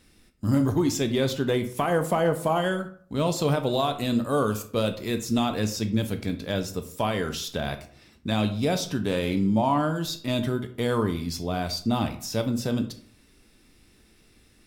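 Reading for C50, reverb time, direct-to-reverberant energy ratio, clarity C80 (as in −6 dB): 12.0 dB, 0.55 s, 7.5 dB, 16.0 dB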